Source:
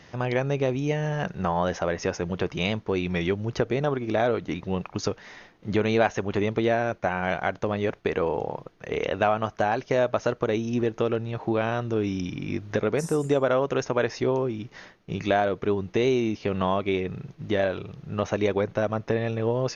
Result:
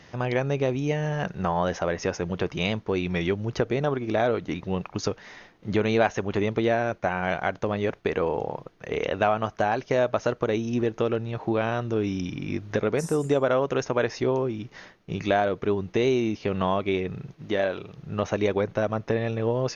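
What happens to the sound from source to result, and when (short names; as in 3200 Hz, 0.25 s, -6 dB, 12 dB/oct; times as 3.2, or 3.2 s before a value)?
17.34–17.98 low shelf 120 Hz -11.5 dB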